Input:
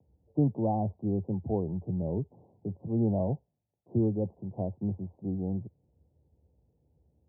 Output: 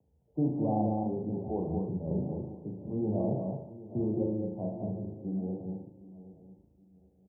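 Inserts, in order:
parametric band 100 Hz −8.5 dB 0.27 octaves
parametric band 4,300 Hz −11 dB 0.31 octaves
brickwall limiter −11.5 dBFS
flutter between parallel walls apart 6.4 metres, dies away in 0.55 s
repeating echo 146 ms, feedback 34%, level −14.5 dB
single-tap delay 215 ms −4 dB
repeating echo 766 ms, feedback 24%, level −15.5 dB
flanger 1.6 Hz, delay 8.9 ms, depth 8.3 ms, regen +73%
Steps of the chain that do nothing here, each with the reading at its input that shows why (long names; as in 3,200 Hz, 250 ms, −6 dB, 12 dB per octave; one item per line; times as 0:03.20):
parametric band 4,300 Hz: nothing at its input above 850 Hz
brickwall limiter −11.5 dBFS: peak of its input −16.0 dBFS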